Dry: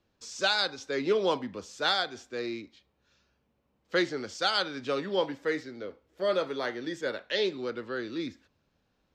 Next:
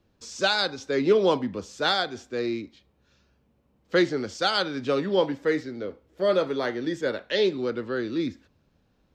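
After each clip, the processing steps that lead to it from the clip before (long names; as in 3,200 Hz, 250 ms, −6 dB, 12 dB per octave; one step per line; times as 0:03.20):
low-shelf EQ 480 Hz +7.5 dB
level +2 dB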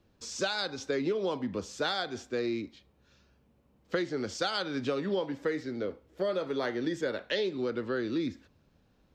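downward compressor 12 to 1, threshold −27 dBFS, peak gain reduction 13 dB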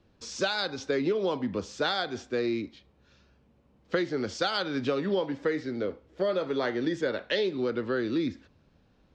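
low-pass filter 5,900 Hz 12 dB per octave
level +3 dB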